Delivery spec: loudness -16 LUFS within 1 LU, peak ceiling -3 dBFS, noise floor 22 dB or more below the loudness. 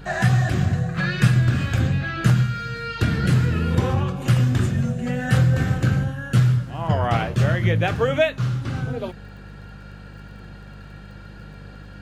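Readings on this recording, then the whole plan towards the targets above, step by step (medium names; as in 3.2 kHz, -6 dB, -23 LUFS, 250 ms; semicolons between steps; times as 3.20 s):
tick rate 21 per s; hum 50 Hz; highest harmonic 200 Hz; hum level -40 dBFS; loudness -21.0 LUFS; peak level -4.0 dBFS; loudness target -16.0 LUFS
-> de-click; de-hum 50 Hz, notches 4; trim +5 dB; peak limiter -3 dBFS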